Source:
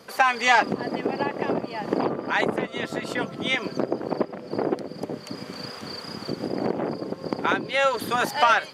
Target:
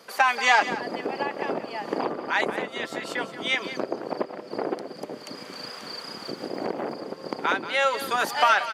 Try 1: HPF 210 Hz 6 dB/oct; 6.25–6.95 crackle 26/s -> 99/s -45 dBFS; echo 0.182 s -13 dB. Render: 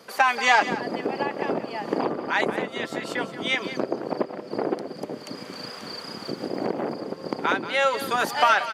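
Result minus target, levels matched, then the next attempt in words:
250 Hz band +3.0 dB
HPF 480 Hz 6 dB/oct; 6.25–6.95 crackle 26/s -> 99/s -45 dBFS; echo 0.182 s -13 dB

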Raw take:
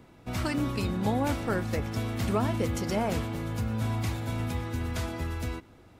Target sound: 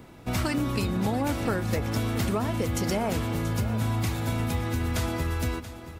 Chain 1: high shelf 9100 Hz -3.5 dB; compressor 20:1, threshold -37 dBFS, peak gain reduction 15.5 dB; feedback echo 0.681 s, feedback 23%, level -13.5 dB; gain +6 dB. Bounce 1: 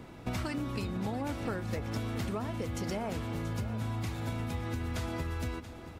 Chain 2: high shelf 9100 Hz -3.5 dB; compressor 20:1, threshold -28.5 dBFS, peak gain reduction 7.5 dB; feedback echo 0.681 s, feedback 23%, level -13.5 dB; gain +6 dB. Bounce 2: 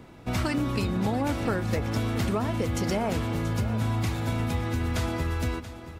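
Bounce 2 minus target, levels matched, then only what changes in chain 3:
8000 Hz band -3.0 dB
change: high shelf 9100 Hz +5.5 dB

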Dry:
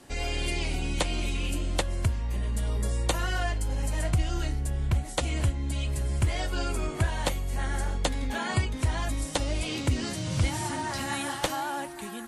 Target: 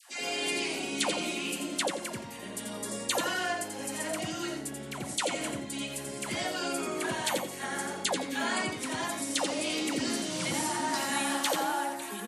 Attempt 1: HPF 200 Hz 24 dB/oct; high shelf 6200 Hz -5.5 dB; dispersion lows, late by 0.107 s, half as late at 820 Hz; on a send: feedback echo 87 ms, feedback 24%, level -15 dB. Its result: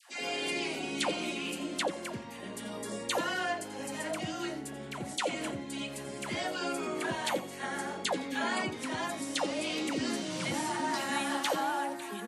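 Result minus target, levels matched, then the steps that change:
echo-to-direct -9 dB; 8000 Hz band -4.5 dB
change: high shelf 6200 Hz +4 dB; change: feedback echo 87 ms, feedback 24%, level -6 dB

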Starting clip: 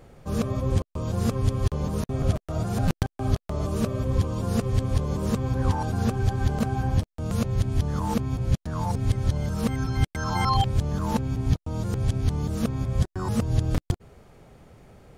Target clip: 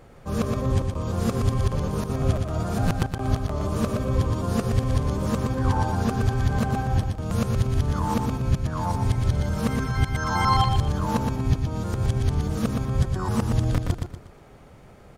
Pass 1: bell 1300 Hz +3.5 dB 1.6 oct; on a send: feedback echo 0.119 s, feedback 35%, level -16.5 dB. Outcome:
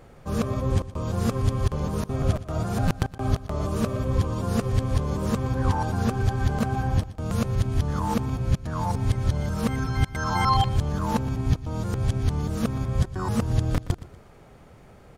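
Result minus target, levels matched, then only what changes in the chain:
echo-to-direct -11.5 dB
change: feedback echo 0.119 s, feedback 35%, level -5 dB

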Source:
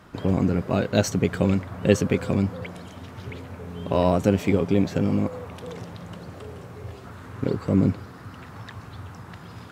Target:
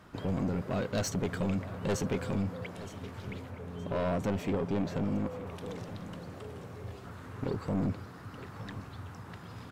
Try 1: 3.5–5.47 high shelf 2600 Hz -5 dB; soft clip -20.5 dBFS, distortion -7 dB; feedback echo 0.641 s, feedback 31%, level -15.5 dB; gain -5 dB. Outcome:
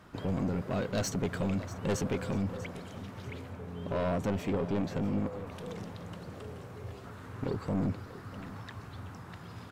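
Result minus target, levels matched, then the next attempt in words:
echo 0.277 s early
3.5–5.47 high shelf 2600 Hz -5 dB; soft clip -20.5 dBFS, distortion -7 dB; feedback echo 0.918 s, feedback 31%, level -15.5 dB; gain -5 dB

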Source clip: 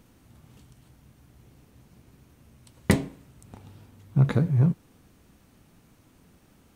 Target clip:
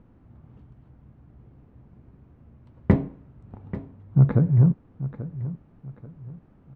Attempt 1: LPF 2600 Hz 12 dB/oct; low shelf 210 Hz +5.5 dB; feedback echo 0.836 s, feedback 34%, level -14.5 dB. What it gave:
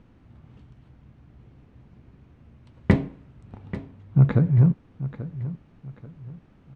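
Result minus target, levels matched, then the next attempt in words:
2000 Hz band +6.5 dB
LPF 1300 Hz 12 dB/oct; low shelf 210 Hz +5.5 dB; feedback echo 0.836 s, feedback 34%, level -14.5 dB

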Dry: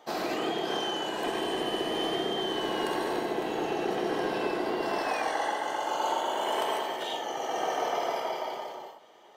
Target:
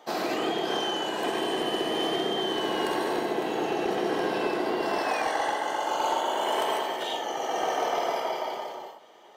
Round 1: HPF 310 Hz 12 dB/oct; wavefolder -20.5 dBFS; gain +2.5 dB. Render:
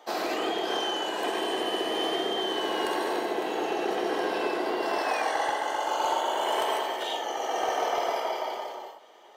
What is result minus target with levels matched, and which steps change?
125 Hz band -9.0 dB
change: HPF 120 Hz 12 dB/oct

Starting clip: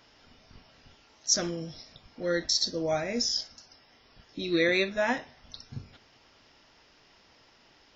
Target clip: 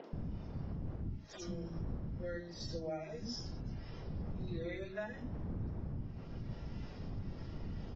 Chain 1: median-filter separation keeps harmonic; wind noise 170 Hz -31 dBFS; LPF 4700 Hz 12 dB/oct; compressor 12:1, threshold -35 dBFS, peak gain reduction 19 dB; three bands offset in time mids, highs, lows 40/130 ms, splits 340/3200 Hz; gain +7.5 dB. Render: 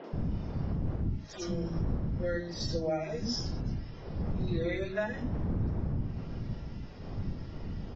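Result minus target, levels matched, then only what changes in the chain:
compressor: peak gain reduction -9 dB
change: compressor 12:1, threshold -45 dBFS, peak gain reduction 28 dB

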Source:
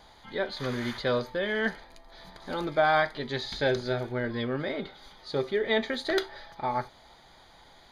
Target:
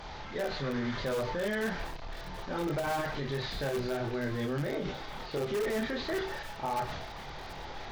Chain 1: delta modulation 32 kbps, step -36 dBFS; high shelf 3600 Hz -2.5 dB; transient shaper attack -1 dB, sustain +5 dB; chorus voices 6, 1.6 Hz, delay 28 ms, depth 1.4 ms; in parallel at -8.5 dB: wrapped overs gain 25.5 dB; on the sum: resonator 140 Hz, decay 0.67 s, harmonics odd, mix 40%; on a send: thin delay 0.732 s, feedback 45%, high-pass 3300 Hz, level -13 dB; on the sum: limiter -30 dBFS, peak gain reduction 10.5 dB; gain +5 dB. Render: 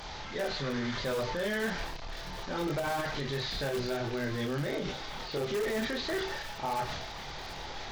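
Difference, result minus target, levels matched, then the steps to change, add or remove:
4000 Hz band +3.5 dB
change: high shelf 3600 Hz -13 dB

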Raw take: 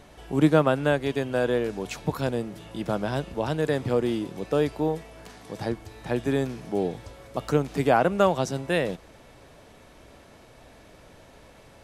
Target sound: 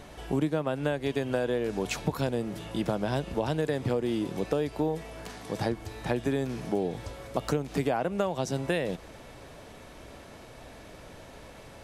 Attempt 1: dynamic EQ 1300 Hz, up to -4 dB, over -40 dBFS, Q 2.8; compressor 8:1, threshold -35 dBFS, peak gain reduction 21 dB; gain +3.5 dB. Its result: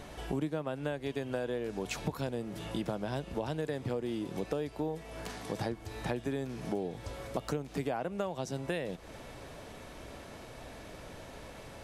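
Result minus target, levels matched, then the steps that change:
compressor: peak gain reduction +6.5 dB
change: compressor 8:1, threshold -27.5 dBFS, peak gain reduction 14.5 dB

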